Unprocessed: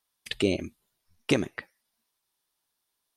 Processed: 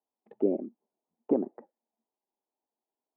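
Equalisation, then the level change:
Chebyshev band-pass filter 220–850 Hz, order 3
0.0 dB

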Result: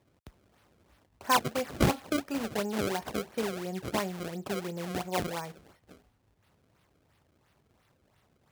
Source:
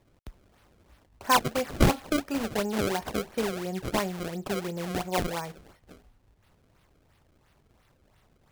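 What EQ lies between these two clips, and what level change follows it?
high-pass filter 74 Hz
−3.0 dB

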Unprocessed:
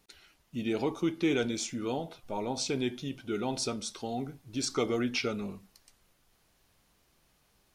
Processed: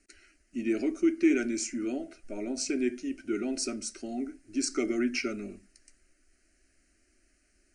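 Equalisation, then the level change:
Butterworth low-pass 9,700 Hz 96 dB per octave
phaser with its sweep stopped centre 350 Hz, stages 4
phaser with its sweep stopped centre 710 Hz, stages 8
+6.0 dB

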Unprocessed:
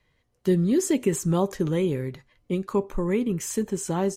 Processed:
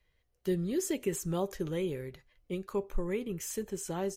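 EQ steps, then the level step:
graphic EQ with 10 bands 125 Hz −10 dB, 250 Hz −11 dB, 500 Hz −3 dB, 1,000 Hz −9 dB, 2,000 Hz −4 dB, 4,000 Hz −4 dB, 8,000 Hz −7 dB
0.0 dB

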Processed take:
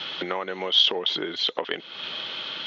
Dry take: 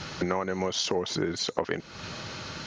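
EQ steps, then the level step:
high-pass filter 320 Hz 12 dB per octave
low-pass with resonance 3,300 Hz, resonance Q 10
high-frequency loss of the air 62 metres
0.0 dB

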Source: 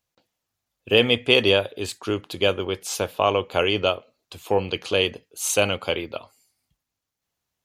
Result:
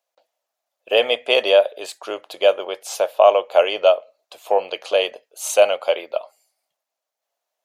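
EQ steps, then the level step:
high-pass with resonance 620 Hz, resonance Q 4.9
−1.5 dB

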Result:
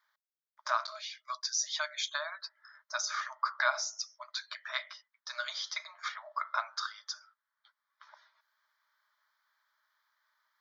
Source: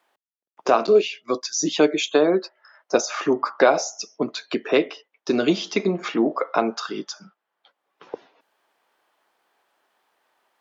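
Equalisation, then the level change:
linear-phase brick-wall high-pass 590 Hz
phaser with its sweep stopped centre 2,700 Hz, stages 6
−4.0 dB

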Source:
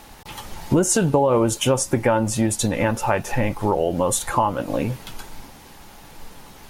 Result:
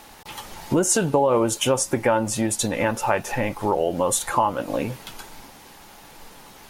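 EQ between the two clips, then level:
low-shelf EQ 180 Hz −9 dB
0.0 dB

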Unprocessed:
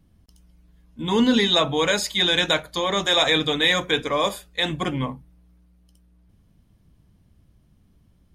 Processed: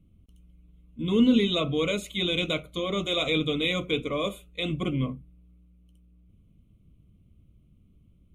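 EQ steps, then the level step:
Butterworth band-reject 1,700 Hz, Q 1.7
low-pass filter 3,600 Hz 6 dB per octave
phaser with its sweep stopped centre 2,100 Hz, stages 4
0.0 dB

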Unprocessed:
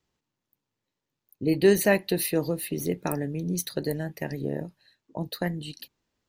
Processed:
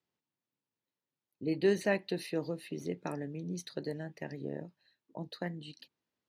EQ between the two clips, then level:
band-pass filter 130–5,500 Hz
−8.5 dB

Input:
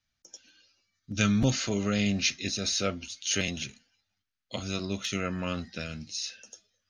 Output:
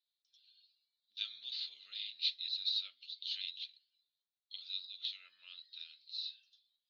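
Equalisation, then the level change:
flat-topped band-pass 4,000 Hz, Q 4.2
high-frequency loss of the air 350 metres
+10.0 dB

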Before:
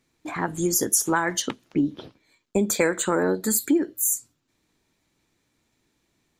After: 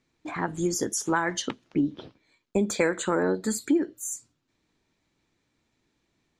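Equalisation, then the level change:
high-frequency loss of the air 110 metres
high-shelf EQ 7,300 Hz +9 dB
−2.0 dB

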